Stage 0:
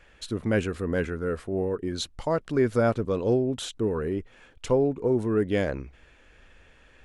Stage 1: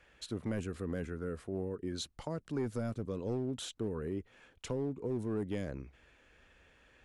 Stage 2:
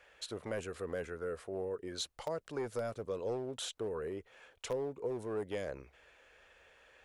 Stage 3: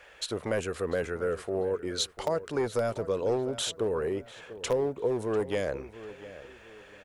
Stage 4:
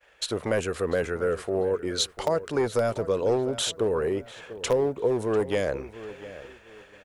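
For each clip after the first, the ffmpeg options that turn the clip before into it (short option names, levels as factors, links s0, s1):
-filter_complex "[0:a]highpass=f=58:p=1,acrossover=split=310|5500[s0][s1][s2];[s0]asoftclip=type=hard:threshold=0.0473[s3];[s1]acompressor=threshold=0.02:ratio=6[s4];[s3][s4][s2]amix=inputs=3:normalize=0,volume=0.473"
-filter_complex "[0:a]lowshelf=f=360:t=q:w=1.5:g=-10,asplit=2[s0][s1];[s1]aeval=exprs='(mod(26.6*val(0)+1,2)-1)/26.6':c=same,volume=0.266[s2];[s0][s2]amix=inputs=2:normalize=0"
-filter_complex "[0:a]asplit=2[s0][s1];[s1]adelay=695,lowpass=f=2700:p=1,volume=0.178,asplit=2[s2][s3];[s3]adelay=695,lowpass=f=2700:p=1,volume=0.36,asplit=2[s4][s5];[s5]adelay=695,lowpass=f=2700:p=1,volume=0.36[s6];[s0][s2][s4][s6]amix=inputs=4:normalize=0,volume=2.82"
-af "agate=range=0.0224:threshold=0.00501:ratio=3:detection=peak,volume=1.58"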